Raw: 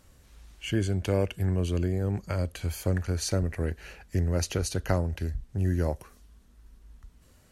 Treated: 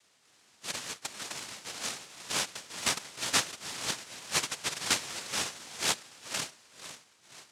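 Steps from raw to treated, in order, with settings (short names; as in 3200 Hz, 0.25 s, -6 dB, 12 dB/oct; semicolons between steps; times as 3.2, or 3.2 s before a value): diffused feedback echo 0.514 s, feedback 43%, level -4 dB; LFO high-pass sine 2 Hz 550–4700 Hz; noise vocoder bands 1; gain -2 dB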